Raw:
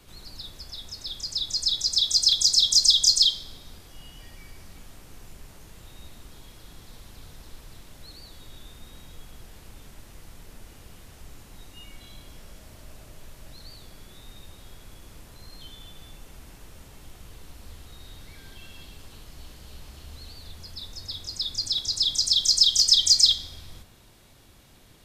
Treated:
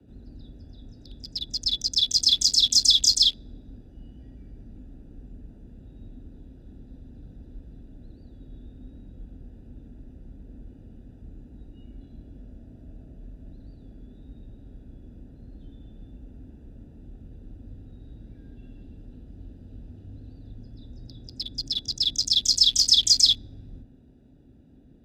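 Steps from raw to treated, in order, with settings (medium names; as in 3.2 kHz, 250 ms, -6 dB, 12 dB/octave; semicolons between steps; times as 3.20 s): local Wiener filter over 41 samples; peaking EQ 900 Hz -2.5 dB 2 oct; band-stop 1.1 kHz, Q 14; small resonant body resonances 230/3400 Hz, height 12 dB, ringing for 50 ms; frequency shift +26 Hz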